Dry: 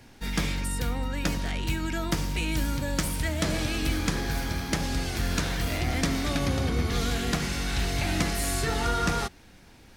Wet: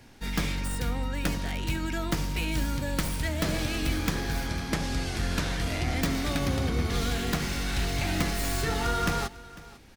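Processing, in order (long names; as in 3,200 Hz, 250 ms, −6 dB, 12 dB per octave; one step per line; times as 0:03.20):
stylus tracing distortion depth 0.14 ms
0:04.47–0:06.02: low-pass filter 11,000 Hz 12 dB per octave
single-tap delay 499 ms −19.5 dB
level −1 dB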